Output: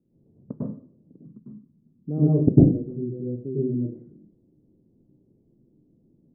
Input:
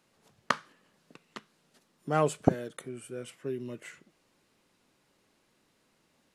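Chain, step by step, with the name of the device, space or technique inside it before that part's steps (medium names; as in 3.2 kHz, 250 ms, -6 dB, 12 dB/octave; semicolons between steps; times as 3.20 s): next room (low-pass 350 Hz 24 dB/octave; reverberation RT60 0.45 s, pre-delay 96 ms, DRR -7 dB); 1.25–2.09 s: high-order bell 510 Hz -12.5 dB; trim +6 dB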